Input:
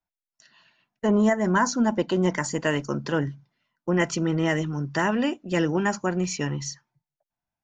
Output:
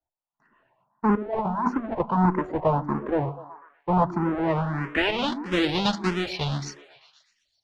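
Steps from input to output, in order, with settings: half-waves squared off; 1.15–2 negative-ratio compressor -22 dBFS, ratio -0.5; low-pass sweep 1000 Hz -> 3800 Hz, 4.32–5.37; on a send: delay with a stepping band-pass 0.123 s, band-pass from 310 Hz, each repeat 0.7 oct, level -9.5 dB; on the sum: endless phaser +1.6 Hz; gain -2 dB

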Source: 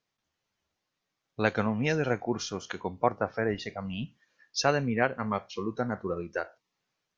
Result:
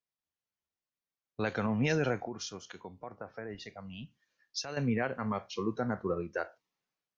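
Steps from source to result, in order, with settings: limiter -20.5 dBFS, peak gain reduction 11 dB; 2.27–4.77 compressor 1.5:1, threshold -48 dBFS, peak gain reduction 8 dB; three-band expander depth 40%

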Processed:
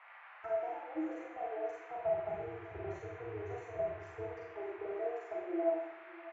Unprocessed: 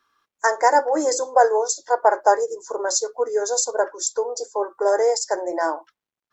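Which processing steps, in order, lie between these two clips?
1.97–4.22 octaver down 2 oct, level -1 dB; recorder AGC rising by 6.4 dB/s; bell 170 Hz -10.5 dB 0.65 oct; compressor, threshold -17 dBFS, peak gain reduction 8 dB; envelope flanger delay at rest 4.2 ms, full sweep at -20 dBFS; octave resonator E, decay 0.13 s; band noise 700–2300 Hz -54 dBFS; air absorption 130 m; echo 0.599 s -18.5 dB; Schroeder reverb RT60 0.72 s, combs from 32 ms, DRR -3 dB; gain -5 dB

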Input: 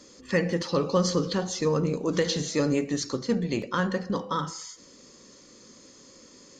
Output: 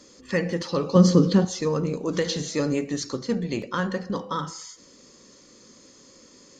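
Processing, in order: 0.95–1.45 bell 210 Hz +12 dB 2 oct

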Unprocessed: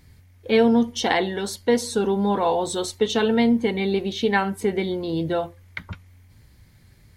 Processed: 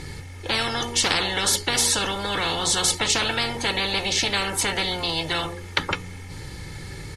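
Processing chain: LPF 10000 Hz 24 dB/oct; bell 160 Hz +6.5 dB 1.2 oct; comb 2.3 ms, depth 71%; de-hum 59.31 Hz, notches 8; spectral compressor 10:1

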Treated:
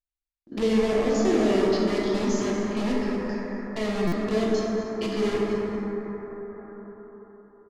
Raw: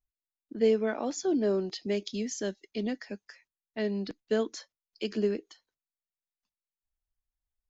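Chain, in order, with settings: stepped spectrum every 50 ms; in parallel at -4 dB: wrapped overs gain 29.5 dB; on the sum: LPF 6000 Hz 12 dB/oct; low shelf 97 Hz +9 dB; notch 1500 Hz, Q 10; gate with hold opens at -48 dBFS; on a send: echo 0.234 s -13.5 dB; on the sum: plate-style reverb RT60 4.3 s, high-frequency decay 0.25×, DRR -5 dB; stuck buffer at 4.07, samples 256, times 8; mismatched tape noise reduction encoder only

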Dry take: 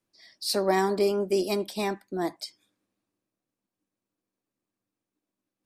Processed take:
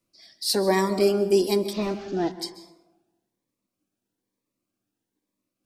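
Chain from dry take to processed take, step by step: 1.73–2.32 delta modulation 32 kbps, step -43.5 dBFS; plate-style reverb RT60 1.1 s, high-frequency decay 0.45×, pre-delay 0.12 s, DRR 13 dB; cascading phaser rising 1.1 Hz; gain +4.5 dB

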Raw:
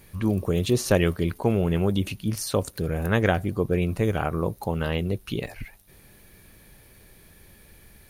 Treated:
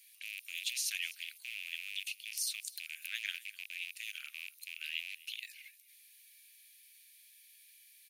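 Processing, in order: rattling part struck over -24 dBFS, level -24 dBFS; steep high-pass 2300 Hz 36 dB/oct; on a send: echo 0.253 s -21 dB; on the sum: gain -3.5 dB

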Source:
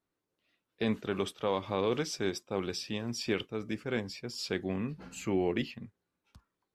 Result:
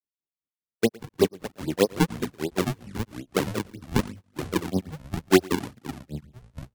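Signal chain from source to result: inverse Chebyshev low-pass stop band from 2200 Hz, stop band 50 dB; notches 50/100 Hz; in parallel at -1 dB: vocal rider 2 s; on the sum: grains 0.111 s, grains 5.1/s, spray 22 ms, pitch spread up and down by 0 st; decimation with a swept rate 40×, swing 160% 3.1 Hz; on a send: echo 0.114 s -22.5 dB; on the sum: echoes that change speed 0.146 s, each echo -4 st, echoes 3, each echo -6 dB; three-band expander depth 70%; gain +7 dB

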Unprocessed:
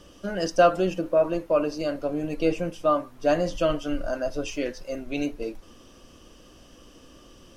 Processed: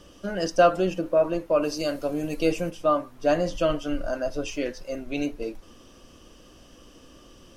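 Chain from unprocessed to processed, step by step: 1.62–2.69 high shelf 3800 Hz -> 5600 Hz +12 dB

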